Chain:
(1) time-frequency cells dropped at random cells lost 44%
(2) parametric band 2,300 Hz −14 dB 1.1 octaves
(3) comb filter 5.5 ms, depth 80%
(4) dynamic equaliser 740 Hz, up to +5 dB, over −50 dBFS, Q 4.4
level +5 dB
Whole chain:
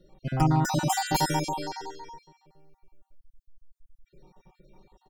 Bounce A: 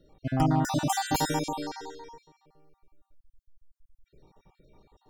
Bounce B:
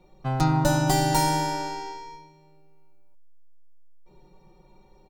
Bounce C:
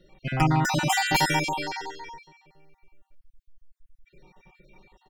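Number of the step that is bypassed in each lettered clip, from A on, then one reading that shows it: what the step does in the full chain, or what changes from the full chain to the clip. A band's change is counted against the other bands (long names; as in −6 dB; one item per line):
3, 250 Hz band +2.5 dB
1, 500 Hz band +3.0 dB
2, 2 kHz band +8.5 dB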